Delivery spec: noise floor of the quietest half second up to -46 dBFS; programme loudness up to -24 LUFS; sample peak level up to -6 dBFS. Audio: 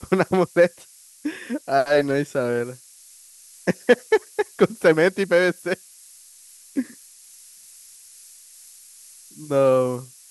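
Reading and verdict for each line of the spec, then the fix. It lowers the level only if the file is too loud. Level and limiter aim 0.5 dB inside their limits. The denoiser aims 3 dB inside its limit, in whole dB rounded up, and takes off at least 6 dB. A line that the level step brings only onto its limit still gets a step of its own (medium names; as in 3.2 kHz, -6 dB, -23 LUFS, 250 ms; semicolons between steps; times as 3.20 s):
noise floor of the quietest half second -49 dBFS: pass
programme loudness -21.5 LUFS: fail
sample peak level -3.0 dBFS: fail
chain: trim -3 dB; peak limiter -6.5 dBFS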